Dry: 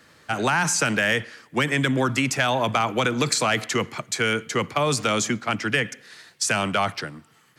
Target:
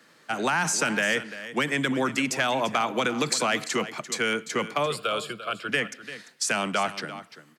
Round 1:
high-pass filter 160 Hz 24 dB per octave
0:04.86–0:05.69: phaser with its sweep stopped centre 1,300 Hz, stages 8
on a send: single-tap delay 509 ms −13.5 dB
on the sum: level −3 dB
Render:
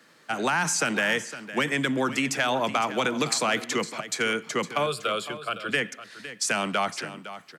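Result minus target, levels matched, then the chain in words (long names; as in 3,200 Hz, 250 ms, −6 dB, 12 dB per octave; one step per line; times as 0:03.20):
echo 165 ms late
high-pass filter 160 Hz 24 dB per octave
0:04.86–0:05.69: phaser with its sweep stopped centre 1,300 Hz, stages 8
on a send: single-tap delay 344 ms −13.5 dB
on the sum: level −3 dB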